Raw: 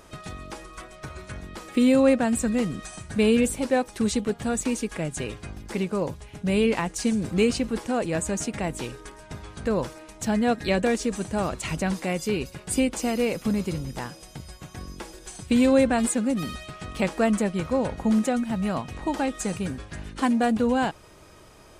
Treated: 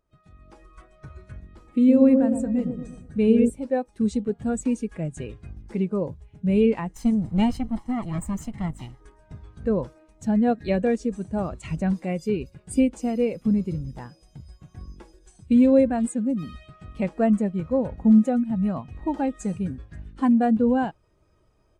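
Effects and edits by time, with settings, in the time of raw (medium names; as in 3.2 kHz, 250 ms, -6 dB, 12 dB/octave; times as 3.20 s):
1.43–3.50 s: feedback echo behind a low-pass 116 ms, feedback 55%, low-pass 1 kHz, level -4 dB
6.93–9.01 s: comb filter that takes the minimum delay 0.98 ms
whole clip: bass shelf 130 Hz +4 dB; level rider gain up to 9 dB; spectral contrast expander 1.5:1; trim -4.5 dB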